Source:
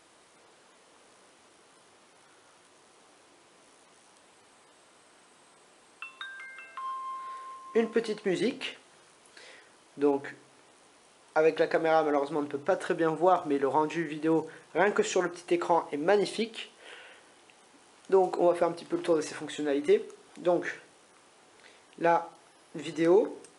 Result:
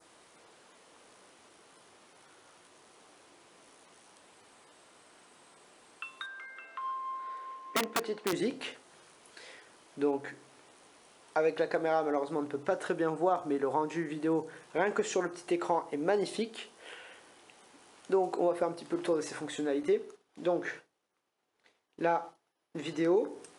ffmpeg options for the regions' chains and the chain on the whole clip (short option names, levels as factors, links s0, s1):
-filter_complex "[0:a]asettb=1/sr,asplit=3[s0][s1][s2];[s0]atrim=end=6.264[s3];[s1]atrim=start=6.26:end=8.33,asetpts=PTS-STARTPTS,afade=t=in:d=0.004:c=qsin,afade=t=out:st=2.066:d=0.004:c=qsin,aemphasis=mode=reproduction:type=50fm,aeval=exprs='(mod(9.44*val(0)+1,2)-1)/9.44':c=same,highpass=240[s4];[s2]atrim=start=8.326[s5];[s3][s4]acrossfade=d=0.004:c1=hsin:c2=qsin[s6];[s6][s5]acrossfade=d=0.004:c1=qsin:c2=hsin,asettb=1/sr,asplit=3[s7][s8][s9];[s7]atrim=end=19.834[s10];[s8]atrim=start=19.83:end=23.17,asetpts=PTS-STARTPTS,afade=t=in:d=0.004:c=qsin,afade=t=out:st=3.336:d=0.004:c=qsin,agate=range=0.0224:threshold=0.00501:ratio=3:release=100:detection=peak,equalizer=f=8600:w=1.7:g=-5.5[s11];[s9]atrim=start=23.166[s12];[s10][s11]acrossfade=d=0.004:c1=hsin:c2=qsin[s13];[s13][s12]acrossfade=d=0.004:c1=qsin:c2=hsin,adynamicequalizer=threshold=0.00316:dfrequency=2800:dqfactor=1.2:tfrequency=2800:tqfactor=1.2:attack=5:release=100:ratio=0.375:range=3:mode=cutabove:tftype=bell,acompressor=threshold=0.0251:ratio=1.5"